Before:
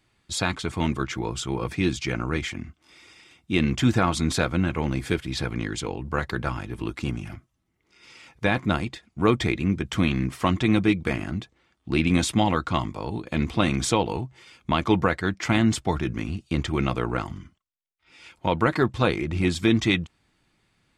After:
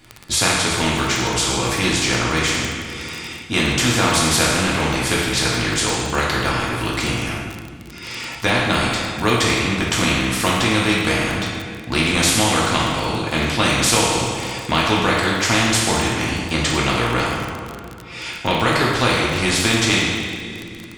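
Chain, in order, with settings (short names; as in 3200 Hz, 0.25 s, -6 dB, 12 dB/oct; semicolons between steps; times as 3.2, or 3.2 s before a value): two-slope reverb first 0.9 s, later 2.5 s, from -17 dB, DRR -4 dB; crackle 33/s -34 dBFS; spectral compressor 2:1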